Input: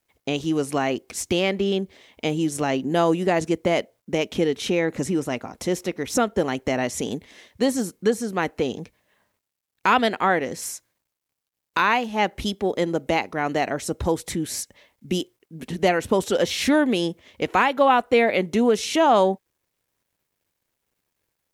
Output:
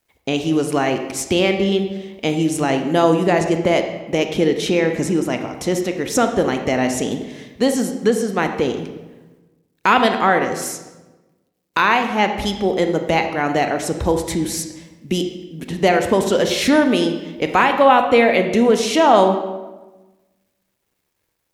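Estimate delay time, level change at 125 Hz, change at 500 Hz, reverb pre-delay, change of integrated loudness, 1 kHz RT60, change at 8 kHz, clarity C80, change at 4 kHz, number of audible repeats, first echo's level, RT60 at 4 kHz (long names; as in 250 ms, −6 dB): no echo audible, +5.5 dB, +5.0 dB, 26 ms, +5.0 dB, 1.1 s, +4.5 dB, 9.5 dB, +4.5 dB, no echo audible, no echo audible, 0.80 s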